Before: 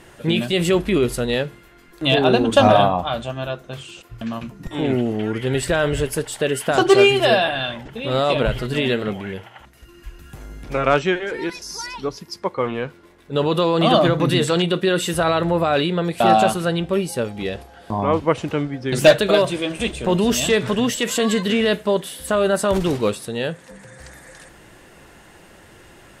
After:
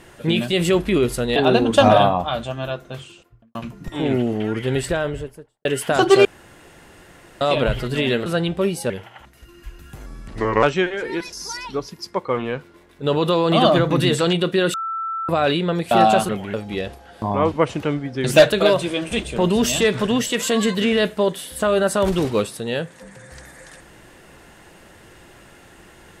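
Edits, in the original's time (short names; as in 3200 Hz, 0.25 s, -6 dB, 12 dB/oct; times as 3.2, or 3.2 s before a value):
1.36–2.15 cut
3.67–4.34 studio fade out
5.43–6.44 studio fade out
7.04–8.2 room tone
9.05–9.3 swap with 16.58–17.22
10.46–10.92 speed 81%
15.03–15.58 bleep 1330 Hz -23 dBFS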